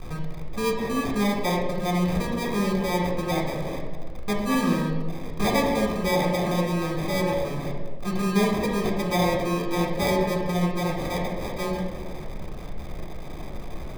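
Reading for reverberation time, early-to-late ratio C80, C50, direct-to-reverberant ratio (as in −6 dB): 1.6 s, 6.0 dB, 3.5 dB, 0.0 dB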